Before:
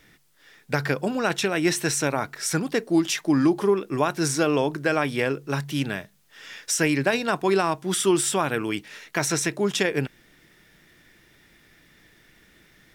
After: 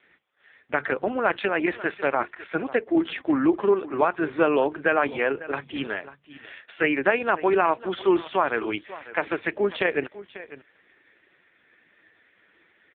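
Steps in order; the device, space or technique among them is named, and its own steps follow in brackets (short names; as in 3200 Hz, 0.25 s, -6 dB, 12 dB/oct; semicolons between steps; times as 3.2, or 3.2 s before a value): satellite phone (BPF 360–3100 Hz; echo 0.547 s -16.5 dB; gain +3.5 dB; AMR-NB 4.75 kbps 8000 Hz)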